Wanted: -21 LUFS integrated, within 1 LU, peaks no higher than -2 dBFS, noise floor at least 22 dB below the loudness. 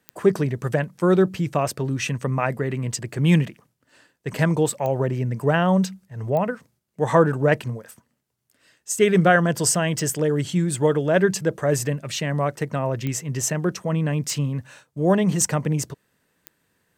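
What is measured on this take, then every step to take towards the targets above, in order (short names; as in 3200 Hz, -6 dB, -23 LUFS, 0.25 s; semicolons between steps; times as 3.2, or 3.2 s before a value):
clicks 7; loudness -22.0 LUFS; peak -2.0 dBFS; loudness target -21.0 LUFS
-> de-click; gain +1 dB; limiter -2 dBFS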